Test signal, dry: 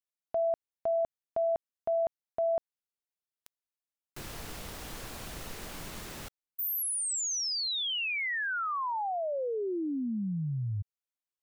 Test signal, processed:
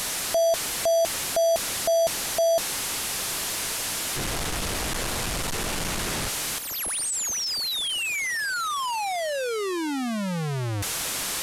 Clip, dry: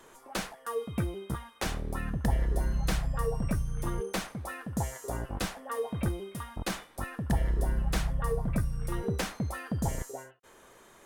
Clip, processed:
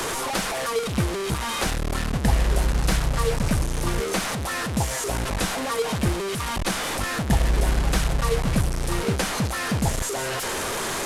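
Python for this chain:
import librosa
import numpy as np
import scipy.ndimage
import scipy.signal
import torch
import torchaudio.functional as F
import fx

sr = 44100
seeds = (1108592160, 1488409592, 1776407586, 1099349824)

y = fx.delta_mod(x, sr, bps=64000, step_db=-28.5)
y = F.gain(torch.from_numpy(y), 7.0).numpy()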